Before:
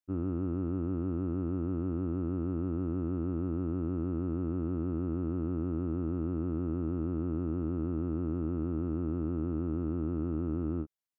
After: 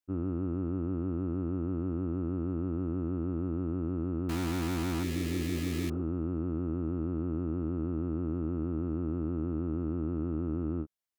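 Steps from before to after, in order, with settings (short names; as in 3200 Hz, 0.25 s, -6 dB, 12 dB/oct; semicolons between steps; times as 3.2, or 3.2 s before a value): 4.29–5.9 requantised 6-bit, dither none; 5.06–5.98 spectral repair 290–1600 Hz after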